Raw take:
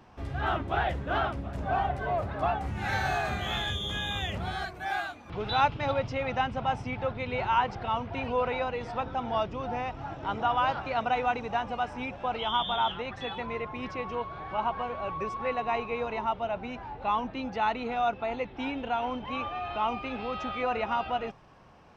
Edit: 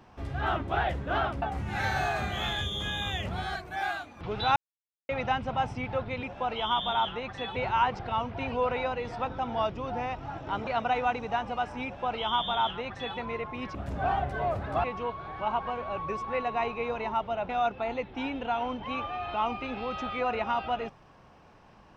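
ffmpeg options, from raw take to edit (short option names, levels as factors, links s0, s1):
-filter_complex "[0:a]asplit=10[s0][s1][s2][s3][s4][s5][s6][s7][s8][s9];[s0]atrim=end=1.422[s10];[s1]atrim=start=2.508:end=5.65,asetpts=PTS-STARTPTS,afade=t=out:st=3.138:d=0.004:c=hsin[s11];[s2]atrim=start=5.65:end=6.18,asetpts=PTS-STARTPTS,volume=0[s12];[s3]atrim=start=6.18:end=7.322,asetpts=PTS-STARTPTS,afade=t=in:d=0.004:c=hsin[s13];[s4]atrim=start=12.058:end=13.392[s14];[s5]atrim=start=7.318:end=10.432[s15];[s6]atrim=start=10.878:end=13.962[s16];[s7]atrim=start=1.418:end=2.512[s17];[s8]atrim=start=13.958:end=16.612[s18];[s9]atrim=start=17.908[s19];[s11][s12][s13]concat=n=3:v=0:a=1[s20];[s10][s20]acrossfade=d=0.004:c1=hsin:c2=hsin[s21];[s21][s14]acrossfade=d=0.004:c1=hsin:c2=hsin[s22];[s22][s15]acrossfade=d=0.004:c1=hsin:c2=hsin[s23];[s23][s16]acrossfade=d=0.004:c1=hsin:c2=hsin[s24];[s24][s17]acrossfade=d=0.004:c1=hsin:c2=hsin[s25];[s25][s18]acrossfade=d=0.004:c1=hsin:c2=hsin[s26];[s26][s19]acrossfade=d=0.004:c1=hsin:c2=hsin"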